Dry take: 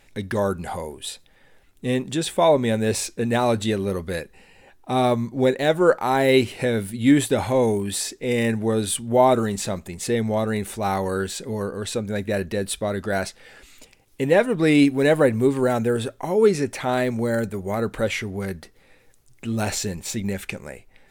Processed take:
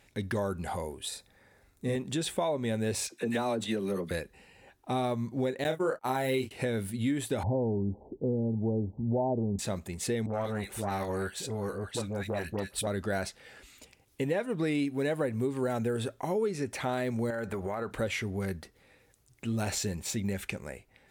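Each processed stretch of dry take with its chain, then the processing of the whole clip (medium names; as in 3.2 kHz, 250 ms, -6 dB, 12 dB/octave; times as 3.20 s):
1.08–1.96 s: peaking EQ 3 kHz -13.5 dB 0.34 oct + doubling 42 ms -2.5 dB
3.07–4.11 s: high-pass 140 Hz 24 dB/octave + phase dispersion lows, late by 43 ms, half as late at 970 Hz
5.64–6.51 s: gate -25 dBFS, range -32 dB + treble shelf 11 kHz +10 dB + doubling 31 ms -6 dB
7.43–9.59 s: steep low-pass 940 Hz 96 dB/octave + bass shelf 370 Hz +9 dB
10.26–12.87 s: band-stop 240 Hz, Q 6.5 + phase dispersion highs, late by 76 ms, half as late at 1 kHz + transformer saturation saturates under 640 Hz
17.30–17.91 s: peaking EQ 1.1 kHz +13 dB 3 oct + compression 5:1, threshold -26 dBFS
whole clip: high-pass 42 Hz; peaking EQ 65 Hz +3.5 dB 1.8 oct; compression 6:1, threshold -22 dBFS; trim -5 dB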